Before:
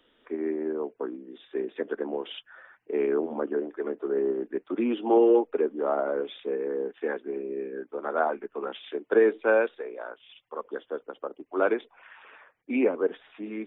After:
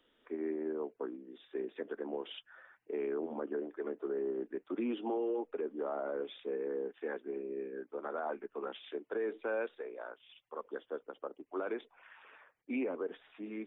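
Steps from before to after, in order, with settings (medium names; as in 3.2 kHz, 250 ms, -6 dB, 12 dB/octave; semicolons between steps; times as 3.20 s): peak limiter -21 dBFS, peak gain reduction 11 dB; trim -7 dB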